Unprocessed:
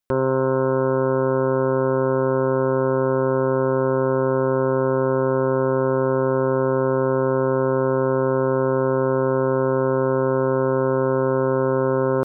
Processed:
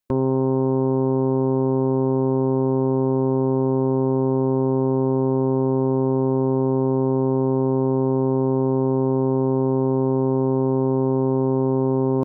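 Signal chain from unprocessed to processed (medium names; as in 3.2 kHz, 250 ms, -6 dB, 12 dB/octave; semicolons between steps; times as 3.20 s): band-stop 1.4 kHz, Q 12; formant shift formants -5 st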